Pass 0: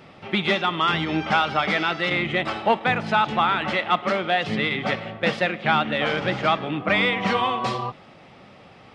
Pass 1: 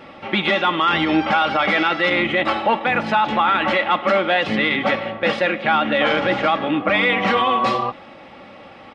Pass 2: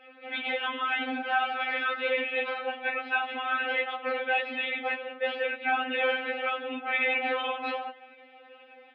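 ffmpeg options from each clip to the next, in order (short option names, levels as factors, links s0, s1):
-af "aecho=1:1:3.6:0.46,alimiter=limit=0.178:level=0:latency=1:release=12,bass=f=250:g=-5,treble=f=4000:g=-8,volume=2.24"
-af "afftfilt=real='hypot(re,im)*cos(2*PI*random(0))':imag='hypot(re,im)*sin(2*PI*random(1))':win_size=512:overlap=0.75,highpass=340,equalizer=f=450:t=q:w=4:g=6,equalizer=f=680:t=q:w=4:g=4,equalizer=f=1000:t=q:w=4:g=-5,equalizer=f=1600:t=q:w=4:g=9,equalizer=f=2500:t=q:w=4:g=8,lowpass=f=3700:w=0.5412,lowpass=f=3700:w=1.3066,afftfilt=real='re*3.46*eq(mod(b,12),0)':imag='im*3.46*eq(mod(b,12),0)':win_size=2048:overlap=0.75,volume=0.531"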